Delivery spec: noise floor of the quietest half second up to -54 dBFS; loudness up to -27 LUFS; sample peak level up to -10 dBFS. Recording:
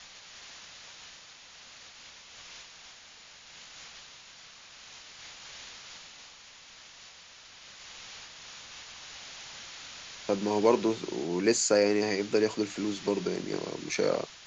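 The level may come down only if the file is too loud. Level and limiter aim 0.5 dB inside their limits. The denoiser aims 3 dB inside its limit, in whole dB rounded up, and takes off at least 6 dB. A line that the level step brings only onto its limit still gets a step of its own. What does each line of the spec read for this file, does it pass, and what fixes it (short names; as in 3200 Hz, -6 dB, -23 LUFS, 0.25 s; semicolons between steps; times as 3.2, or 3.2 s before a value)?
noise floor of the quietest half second -52 dBFS: fail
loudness -29.5 LUFS: OK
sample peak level -10.5 dBFS: OK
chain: denoiser 6 dB, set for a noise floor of -52 dBFS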